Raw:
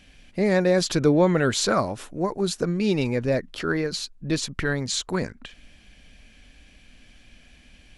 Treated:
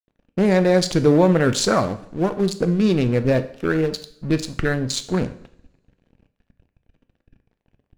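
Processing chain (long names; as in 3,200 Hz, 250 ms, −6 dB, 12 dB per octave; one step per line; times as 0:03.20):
adaptive Wiener filter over 41 samples
in parallel at +2 dB: brickwall limiter −17.5 dBFS, peak gain reduction 10 dB
on the sum: dead-zone distortion −39.5 dBFS
coupled-rooms reverb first 0.55 s, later 1.6 s, from −25 dB, DRR 9 dB
pitch vibrato 0.89 Hz 20 cents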